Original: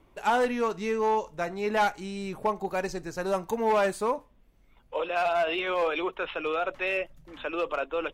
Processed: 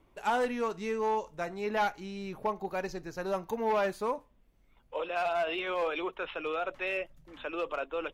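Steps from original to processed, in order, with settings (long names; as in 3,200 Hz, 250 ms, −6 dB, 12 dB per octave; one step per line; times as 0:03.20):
0:01.64–0:04.04: parametric band 8,300 Hz −15 dB 0.31 octaves
level −4.5 dB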